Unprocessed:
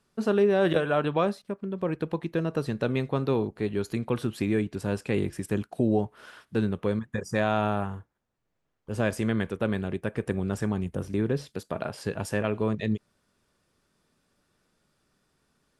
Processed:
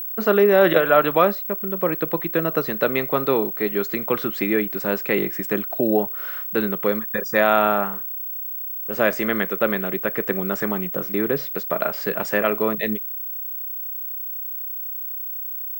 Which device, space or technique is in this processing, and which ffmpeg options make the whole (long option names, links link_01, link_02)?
old television with a line whistle: -af "highpass=frequency=180:width=0.5412,highpass=frequency=180:width=1.3066,equalizer=frequency=240:width_type=q:width=4:gain=-6,equalizer=frequency=600:width_type=q:width=4:gain=4,equalizer=frequency=1300:width_type=q:width=4:gain=7,equalizer=frequency=2000:width_type=q:width=4:gain=8,lowpass=frequency=7500:width=0.5412,lowpass=frequency=7500:width=1.3066,aeval=exprs='val(0)+0.0224*sin(2*PI*15734*n/s)':channel_layout=same,volume=6dB"